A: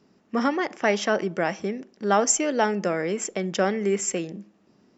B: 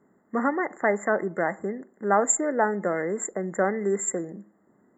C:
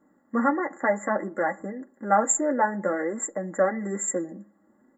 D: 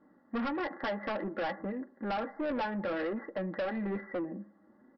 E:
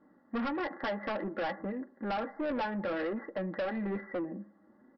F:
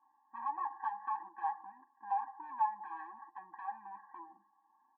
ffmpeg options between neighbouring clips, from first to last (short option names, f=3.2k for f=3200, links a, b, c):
-af "afftfilt=real='re*(1-between(b*sr/4096,2100,6900))':imag='im*(1-between(b*sr/4096,2100,6900))':win_size=4096:overlap=0.75,lowshelf=f=190:g=-6.5"
-af "aecho=1:1:3.6:0.7,flanger=delay=6.5:depth=4.9:regen=-33:speed=0.58:shape=sinusoidal,volume=2dB"
-af "acompressor=threshold=-23dB:ratio=6,aresample=11025,asoftclip=type=tanh:threshold=-29.5dB,aresample=44100"
-af anull
-af "asuperpass=centerf=1000:order=4:qfactor=2.2,afftfilt=real='re*eq(mod(floor(b*sr/1024/380),2),0)':imag='im*eq(mod(floor(b*sr/1024/380),2),0)':win_size=1024:overlap=0.75,volume=5.5dB"